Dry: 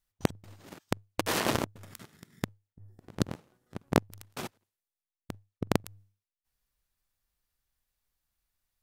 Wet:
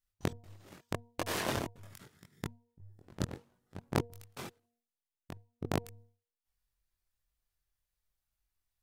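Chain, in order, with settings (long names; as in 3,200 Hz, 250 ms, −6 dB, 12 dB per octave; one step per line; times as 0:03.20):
hum removal 236.4 Hz, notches 4
multi-voice chorus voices 6, 0.77 Hz, delay 22 ms, depth 1.6 ms
level −2.5 dB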